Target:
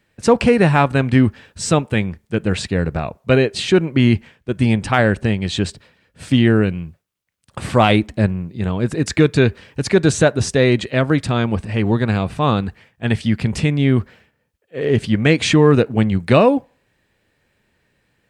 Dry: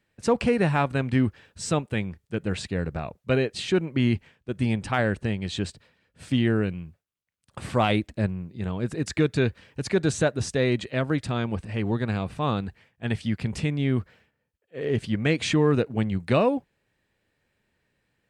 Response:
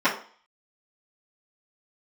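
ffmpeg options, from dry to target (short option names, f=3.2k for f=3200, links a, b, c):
-filter_complex "[0:a]asplit=2[a][b];[1:a]atrim=start_sample=2205,adelay=15[c];[b][c]afir=irnorm=-1:irlink=0,volume=-41dB[d];[a][d]amix=inputs=2:normalize=0,volume=9dB"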